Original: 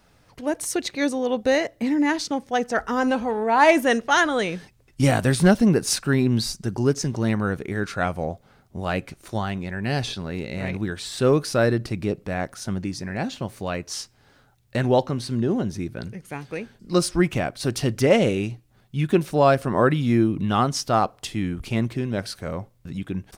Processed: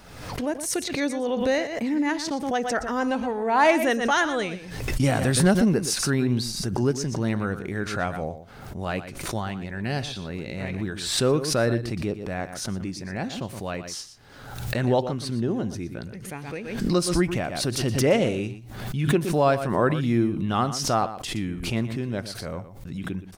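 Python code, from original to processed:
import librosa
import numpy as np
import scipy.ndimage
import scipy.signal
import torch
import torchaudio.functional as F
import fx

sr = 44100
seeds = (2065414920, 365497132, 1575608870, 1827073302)

p1 = x + fx.echo_single(x, sr, ms=119, db=-12.5, dry=0)
p2 = fx.pre_swell(p1, sr, db_per_s=54.0)
y = p2 * librosa.db_to_amplitude(-3.5)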